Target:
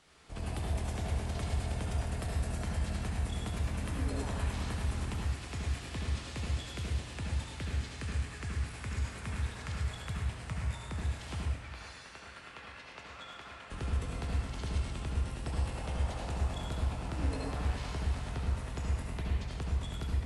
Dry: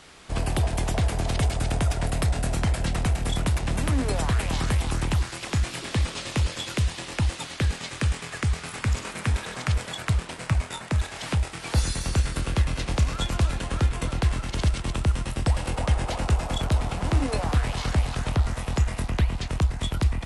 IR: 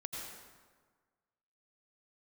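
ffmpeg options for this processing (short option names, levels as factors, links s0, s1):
-filter_complex "[0:a]asettb=1/sr,asplit=3[s0][s1][s2];[s0]atrim=end=11.454[s3];[s1]atrim=start=11.45:end=13.7,asetpts=PTS-STARTPTS,afade=t=in:d=0.004:c=qsin,afade=t=out:st=2.246:d=0.004:c=qsin,bandpass=f=1700:t=q:w=0.82:csg=0[s4];[s2]atrim=start=13.696[s5];[s3][s4]acrossfade=d=0.004:c1=hsin:c2=qsin[s6];[s6][s5]acrossfade=d=0.004:c1=qsin:c2=hsin[s7];[1:a]atrim=start_sample=2205,asetrate=57330,aresample=44100[s8];[s7][s8]afir=irnorm=-1:irlink=0,volume=0.376"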